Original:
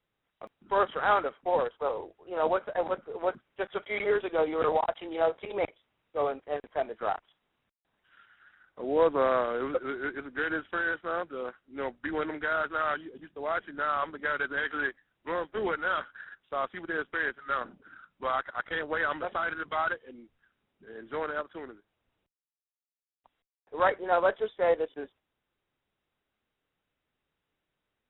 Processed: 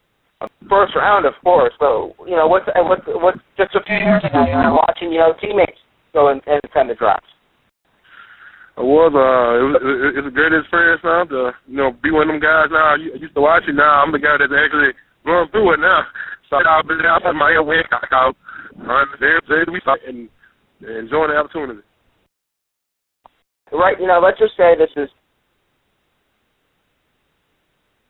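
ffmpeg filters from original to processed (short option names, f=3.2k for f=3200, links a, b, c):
-filter_complex "[0:a]asettb=1/sr,asplit=3[a][b][c];[a]atrim=end=3.844[d];[b]atrim=start=3.84:end=4.77,asetpts=PTS-STARTPTS,afade=t=in:d=0.004:c=qsin,afade=t=out:st=0.926:d=0.004:c=qsin,aeval=exprs='val(0)*sin(2*PI*220*n/s)':c=same[e];[c]atrim=start=4.766[f];[d][e]acrossfade=d=0.004:c1=hsin:c2=qsin[g];[g][f]acrossfade=d=0.004:c1=qsin:c2=hsin,asplit=3[h][i][j];[h]afade=t=out:st=13.36:d=0.02[k];[i]acontrast=80,afade=t=in:st=13.36:d=0.02,afade=t=out:st=14.19:d=0.02[l];[j]afade=t=in:st=14.19:d=0.02[m];[k][l][m]amix=inputs=3:normalize=0,asplit=3[n][o][p];[n]atrim=end=16.592[q];[o]atrim=start=16.588:end=19.942,asetpts=PTS-STARTPTS,areverse[r];[p]atrim=start=19.938[s];[q][r]acrossfade=d=0.004:c1=hsin:c2=hsin[t];[t][s]acrossfade=d=0.004:c1=hsin:c2=hsin,alimiter=level_in=19dB:limit=-1dB:release=50:level=0:latency=1,volume=-1dB"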